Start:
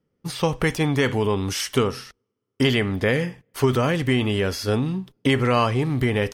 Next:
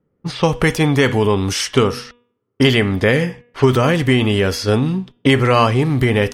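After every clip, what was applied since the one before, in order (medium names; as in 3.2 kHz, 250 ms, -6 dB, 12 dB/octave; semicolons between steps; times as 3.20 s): de-hum 241.4 Hz, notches 15; level-controlled noise filter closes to 1.6 kHz, open at -20.5 dBFS; trim +6.5 dB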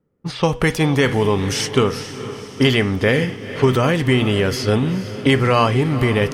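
echo that smears into a reverb 470 ms, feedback 54%, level -13 dB; trim -2 dB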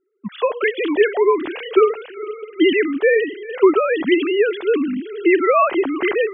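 formants replaced by sine waves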